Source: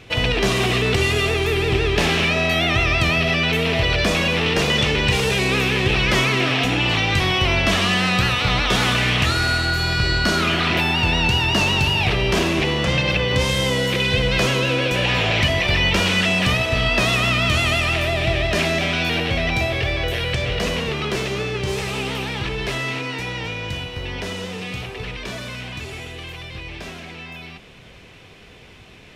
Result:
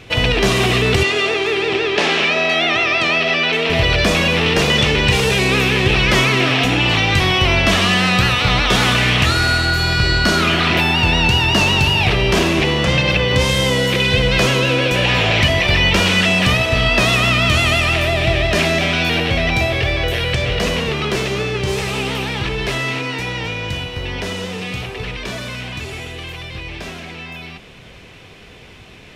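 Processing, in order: 1.03–3.70 s: band-pass 300–6000 Hz; trim +4 dB

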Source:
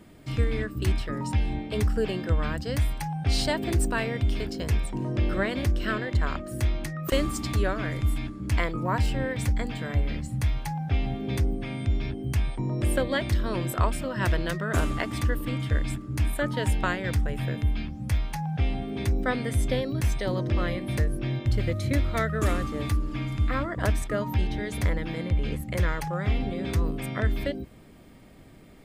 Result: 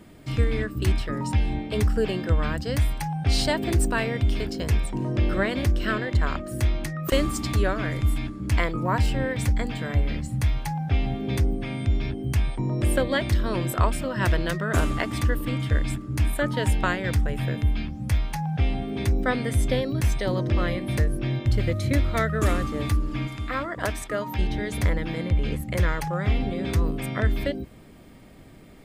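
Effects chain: 23.27–24.39 s: bass shelf 230 Hz -11.5 dB; trim +2.5 dB

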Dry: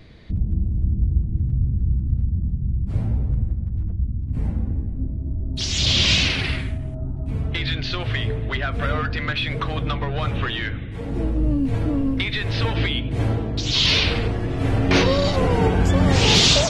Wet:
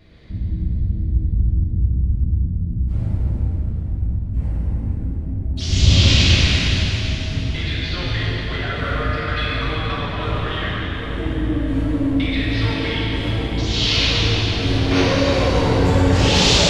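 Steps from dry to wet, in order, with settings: 5.67–6.11 s: bass shelf 450 Hz +11.5 dB; plate-style reverb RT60 4.2 s, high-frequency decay 0.9×, DRR -8 dB; trim -6.5 dB

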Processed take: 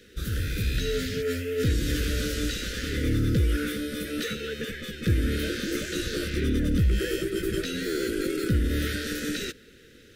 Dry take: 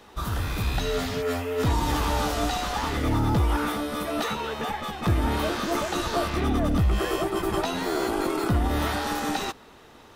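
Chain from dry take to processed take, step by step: elliptic band-stop 510–1500 Hz, stop band 40 dB

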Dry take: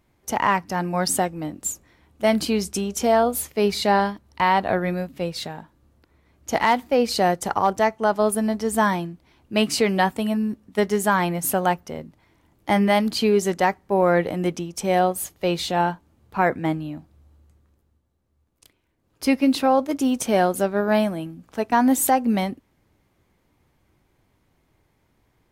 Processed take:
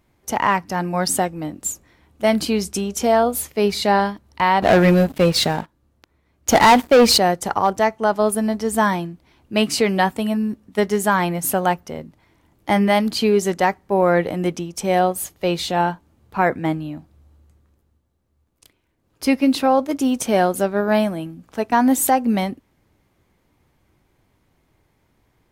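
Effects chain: 4.62–7.18 s: waveshaping leveller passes 3; trim +2 dB

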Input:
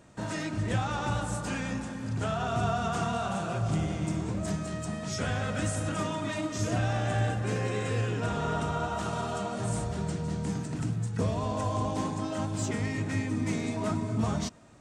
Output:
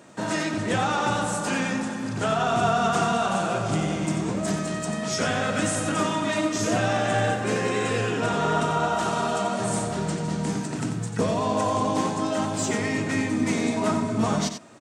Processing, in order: high-pass 200 Hz 12 dB/octave; delay 90 ms -8.5 dB; trim +8 dB

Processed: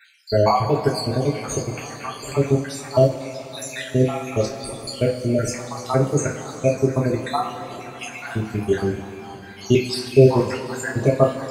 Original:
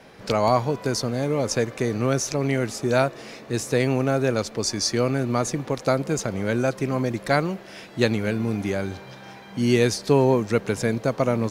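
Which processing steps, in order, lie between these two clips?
random holes in the spectrogram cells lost 72%; two-slope reverb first 0.29 s, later 4.3 s, from -18 dB, DRR -4.5 dB; trim +1 dB

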